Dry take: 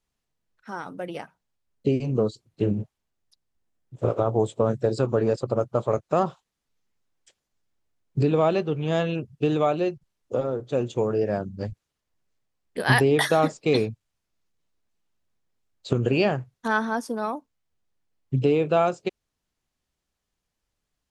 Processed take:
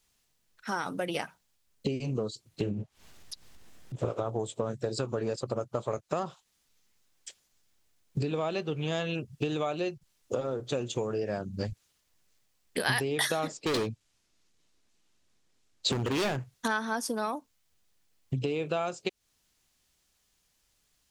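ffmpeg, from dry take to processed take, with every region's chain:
-filter_complex "[0:a]asettb=1/sr,asplit=3[a][b][c];[a]atrim=end=2.694[d];[b]atrim=start=2.69:end=4.05,asetpts=PTS-STARTPTS,afade=t=in:d=0.004:c=qsin,afade=t=out:st=1.356:d=0.004:c=qsin,aemphasis=mode=reproduction:type=cd,acompressor=mode=upward:threshold=-38dB:ratio=2.5:attack=3.2:release=140:knee=2.83:detection=peak[e];[c]atrim=start=4.046[f];[d][e]acrossfade=d=0.004:c1=hsin:c2=qsin[g];[g][f]acrossfade=d=0.004:c1=qsin:c2=hsin,asettb=1/sr,asplit=3[h][i][j];[h]atrim=end=13.474[k];[i]atrim=start=13.47:end=16.39,asetpts=PTS-STARTPTS,afade=t=in:d=0.004:c=qsin,afade=t=out:st=2.916:d=0.004:c=qsin,lowpass=8.8k,equalizer=f=300:t=o:w=1.1:g=5,asoftclip=type=hard:threshold=-21.5dB[l];[j]atrim=start=16.386[m];[k][l]acrossfade=d=0.004:c1=hsin:c2=qsin[n];[n][m]acrossfade=d=0.004:c1=qsin:c2=hsin,acompressor=threshold=-33dB:ratio=6,highshelf=f=2.1k:g=11,volume=3.5dB"

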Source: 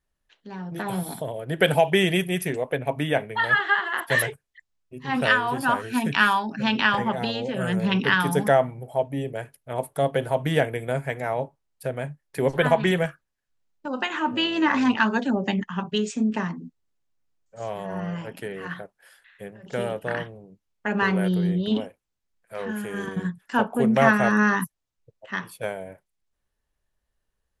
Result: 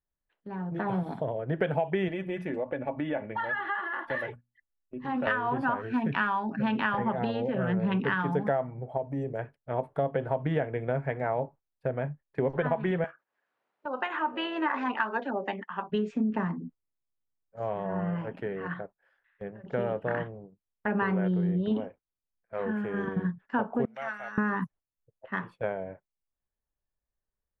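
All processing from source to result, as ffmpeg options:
-filter_complex "[0:a]asettb=1/sr,asplit=3[a][b][c];[a]atrim=end=2.084[d];[b]atrim=start=2.08:end=5.27,asetpts=PTS-STARTPTS,afade=t=in:d=0.004:c=qsin,afade=t=out:st=3.186:d=0.004:c=qsin,bandreject=f=60:t=h:w=6,bandreject=f=120:t=h:w=6,bandreject=f=180:t=h:w=6,bandreject=f=240:t=h:w=6,aecho=1:1:3.5:0.55,atrim=end_sample=140679,acompressor=threshold=-29dB:ratio=2.5:attack=3.2:release=140:knee=1:detection=peak[e];[c]atrim=start=5.266[f];[d][e]acrossfade=d=0.004:c1=hsin:c2=qsin[g];[g][f]acrossfade=d=0.004:c1=qsin:c2=hsin,asettb=1/sr,asplit=3[h][i][j];[h]atrim=end=8.974[k];[i]atrim=start=8.97:end=9.39,asetpts=PTS-STARTPTS,afade=t=in:d=0.004:c=qsin,afade=t=out:st=0.416:d=0.004:c=qsin,highshelf=f=4.3k:t=q:w=3:g=9,acompressor=threshold=-30dB:ratio=2:attack=3.2:release=140:knee=1:detection=peak[l];[j]atrim=start=9.386[m];[k][l]acrossfade=d=0.004:c1=hsin:c2=qsin[n];[n][m]acrossfade=d=0.004:c1=qsin:c2=hsin,asettb=1/sr,asplit=3[o][p][q];[o]atrim=end=13.044[r];[p]atrim=start=13.04:end=15.9,asetpts=PTS-STARTPTS,afade=t=in:d=0.004:c=qsin,afade=t=out:st=2.856:d=0.004:c=qsin,highpass=490,acompressor=mode=upward:threshold=-42dB:ratio=2.5:attack=3.2:release=140:knee=2.83:detection=peak[s];[q]atrim=start=15.896[t];[r][s]acrossfade=d=0.004:c1=hsin:c2=qsin[u];[u][t]acrossfade=d=0.004:c1=qsin:c2=hsin,asettb=1/sr,asplit=3[v][w][x];[v]atrim=end=23.854[y];[w]atrim=start=23.85:end=24.38,asetpts=PTS-STARTPTS,afade=t=in:d=0.004:c=qsin,afade=t=out:st=0.526:d=0.004:c=qsin,aderivative,aecho=1:1:1.4:0.35,atrim=end_sample=23373[z];[x]atrim=start=24.376[aa];[y][z]acrossfade=d=0.004:c1=hsin:c2=qsin[ab];[ab][aa]acrossfade=d=0.004:c1=qsin:c2=hsin,lowpass=1.6k,agate=range=-11dB:threshold=-46dB:ratio=16:detection=peak,acompressor=threshold=-24dB:ratio=6"

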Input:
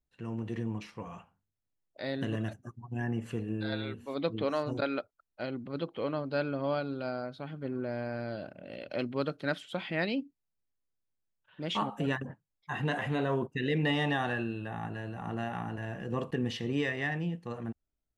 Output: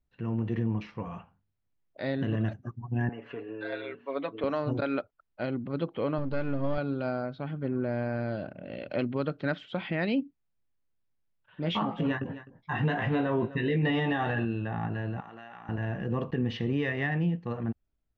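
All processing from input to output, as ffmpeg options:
-filter_complex "[0:a]asettb=1/sr,asplit=3[a][b][c];[a]atrim=end=3.094[d];[b]atrim=start=3.09:end=4.44,asetpts=PTS-STARTPTS,afade=t=in:d=0.004:c=qsin,afade=t=out:st=1.346:d=0.004:c=qsin,highpass=480,lowpass=2.7k,bandreject=f=800:w=8.4,aecho=1:1:7.1:0.72,atrim=end_sample=59535[e];[c]atrim=start=4.436[f];[d][e]acrossfade=d=0.004:c1=hsin:c2=qsin[g];[g][f]acrossfade=d=0.004:c1=qsin:c2=hsin,asettb=1/sr,asplit=3[h][i][j];[h]atrim=end=6.184[k];[i]atrim=start=6.18:end=6.78,asetpts=PTS-STARTPTS,afade=t=in:d=0.004:c=qsin,afade=t=out:st=0.596:d=0.004:c=qsin,aeval=exprs='if(lt(val(0),0),0.447*val(0),val(0))':c=same,lowshelf=f=160:g=8.5[l];[j]atrim=start=6.776[m];[k][l]acrossfade=d=0.004:c1=hsin:c2=qsin[n];[n][m]acrossfade=d=0.004:c1=qsin:c2=hsin,asettb=1/sr,asplit=3[o][p][q];[o]atrim=end=11.624[r];[p]atrim=start=11.62:end=14.45,asetpts=PTS-STARTPTS,afade=t=in:d=0.004:c=qsin,afade=t=out:st=2.826:d=0.004:c=qsin,asplit=2[s][t];[t]adelay=18,volume=-6dB[u];[s][u]amix=inputs=2:normalize=0,atrim=end_sample=124803,aecho=1:1:256:0.119,atrim=end_sample=124803[v];[q]atrim=start=14.446[w];[r][v]acrossfade=d=0.004:c1=hsin:c2=qsin[x];[x][w]acrossfade=d=0.004:c1=qsin:c2=hsin,asettb=1/sr,asplit=3[y][z][aa];[y]atrim=end=15.204[ab];[z]atrim=start=15.2:end=15.69,asetpts=PTS-STARTPTS,afade=t=in:d=0.004:c=qsin,afade=t=out:st=0.486:d=0.004:c=qsin,highpass=f=1.4k:p=1,acompressor=threshold=-46dB:ratio=4:attack=3.2:release=140:knee=1:detection=peak[ac];[aa]atrim=start=15.686[ad];[ab][ac]acrossfade=d=0.004:c1=hsin:c2=qsin[ae];[ae][ad]acrossfade=d=0.004:c1=qsin:c2=hsin,lowpass=f=5.9k:w=0.5412,lowpass=f=5.9k:w=1.3066,bass=f=250:g=4,treble=f=4k:g=-12,alimiter=limit=-23dB:level=0:latency=1:release=102,volume=3.5dB"

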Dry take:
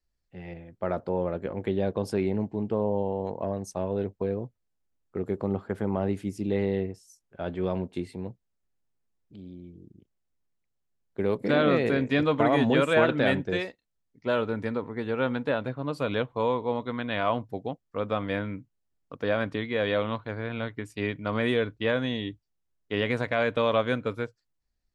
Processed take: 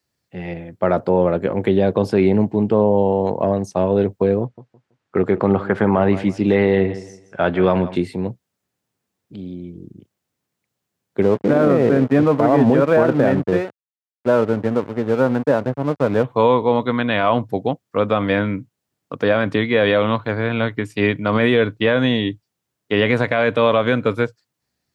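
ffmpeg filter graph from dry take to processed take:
-filter_complex "[0:a]asettb=1/sr,asplit=3[a][b][c];[a]atrim=end=4.414[d];[b]atrim=start=4.41:end=7.96,asetpts=PTS-STARTPTS,afade=t=in:d=0.004:c=qsin,afade=t=out:st=3.546:d=0.004:c=qsin,lowpass=5.4k,equalizer=f=1.5k:w=0.62:g=7.5,aecho=1:1:164|328|492:0.15|0.0404|0.0109,atrim=end_sample=156555[e];[c]atrim=start=7.956[f];[d][e]acrossfade=d=0.004:c1=hsin:c2=qsin[g];[g][f]acrossfade=d=0.004:c1=qsin:c2=hsin,asettb=1/sr,asplit=3[h][i][j];[h]atrim=end=11.224[k];[i]atrim=start=11.22:end=16.24,asetpts=PTS-STARTPTS,afade=t=in:d=0.004:c=qsin,afade=t=out:st=5.016:d=0.004:c=qsin,lowpass=1.1k,aeval=exprs='sgn(val(0))*max(abs(val(0))-0.0075,0)':c=same[l];[j]atrim=start=16.236[m];[k][l]acrossfade=d=0.004:c1=hsin:c2=qsin[n];[n][m]acrossfade=d=0.004:c1=qsin:c2=hsin,highpass=f=94:w=0.5412,highpass=f=94:w=1.3066,acrossover=split=4400[o][p];[p]acompressor=threshold=-57dB:ratio=4:attack=1:release=60[q];[o][q]amix=inputs=2:normalize=0,alimiter=level_in=17dB:limit=-1dB:release=50:level=0:latency=1,volume=-4.5dB"

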